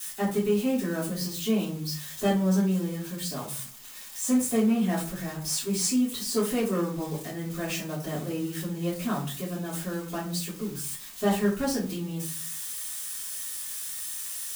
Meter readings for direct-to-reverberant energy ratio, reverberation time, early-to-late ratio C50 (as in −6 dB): −8.0 dB, 0.40 s, 8.0 dB